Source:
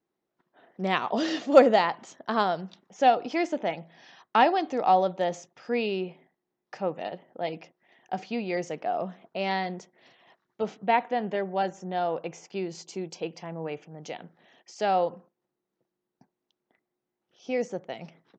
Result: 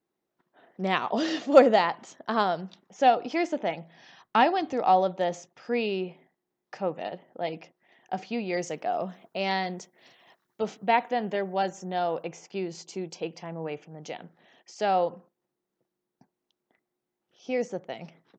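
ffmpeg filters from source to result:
-filter_complex "[0:a]asettb=1/sr,asplit=3[s0][s1][s2];[s0]atrim=end=3.734[s3];[s1]atrim=start=3.73:end=4.73,asetpts=PTS-STARTPTS,afade=t=in:d=0.004:c=qsin,afade=t=out:st=0.996:d=0.004:c=qsin,asubboost=boost=8:cutoff=220[s4];[s2]atrim=start=4.726[s5];[s3][s4]acrossfade=d=0.004:c1=hsin:c2=qsin[s6];[s6][s5]acrossfade=d=0.004:c1=qsin:c2=hsin,asettb=1/sr,asplit=3[s7][s8][s9];[s7]atrim=end=8.534[s10];[s8]atrim=start=8.53:end=12.23,asetpts=PTS-STARTPTS,afade=t=in:d=0.004:c=qsin,afade=t=out:st=3.696:d=0.004:c=qsin,highshelf=f=6200:g=12[s11];[s9]atrim=start=12.226[s12];[s10][s11]acrossfade=d=0.004:c1=hsin:c2=qsin[s13];[s13][s12]acrossfade=d=0.004:c1=qsin:c2=hsin"

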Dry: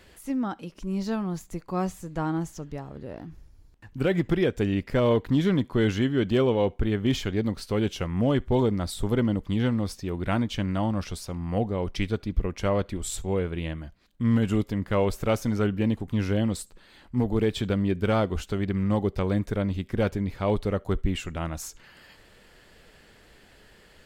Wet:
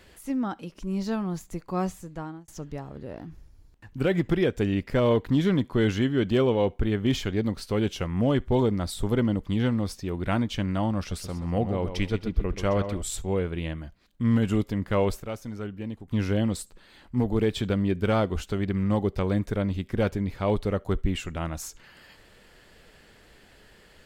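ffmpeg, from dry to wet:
-filter_complex "[0:a]asettb=1/sr,asplit=3[s0][s1][s2];[s0]atrim=end=10.984[s3];[s1]atrim=start=10.98:end=13.02,asetpts=PTS-STARTPTS,afade=t=in:d=0.004:c=qsin,afade=t=out:st=2.036:d=0.004:c=qsin,asplit=2[s4][s5];[s5]adelay=129,lowpass=f=4200:p=1,volume=0.355,asplit=2[s6][s7];[s7]adelay=129,lowpass=f=4200:p=1,volume=0.31,asplit=2[s8][s9];[s9]adelay=129,lowpass=f=4200:p=1,volume=0.31,asplit=2[s10][s11];[s11]adelay=129,lowpass=f=4200:p=1,volume=0.31[s12];[s4][s6][s8][s10][s12]amix=inputs=5:normalize=0,atrim=end_sample=89964[s13];[s2]atrim=start=13.016[s14];[s3][s13]acrossfade=d=0.004:c1=hsin:c2=qsin[s15];[s15][s14]acrossfade=d=0.004:c1=qsin:c2=hsin,asplit=4[s16][s17][s18][s19];[s16]atrim=end=2.48,asetpts=PTS-STARTPTS,afade=t=out:st=1.89:d=0.59[s20];[s17]atrim=start=2.48:end=15.202,asetpts=PTS-STARTPTS,afade=t=in:d=0.004:c=hsin[s21];[s18]atrim=start=15.198:end=16.112,asetpts=PTS-STARTPTS,volume=0.316[s22];[s19]atrim=start=16.108[s23];[s20][s21]concat=n=2:v=0:a=1[s24];[s24][s22]acrossfade=d=0.004:c1=hsin:c2=hsin[s25];[s25][s23]acrossfade=d=0.004:c1=hsin:c2=hsin"

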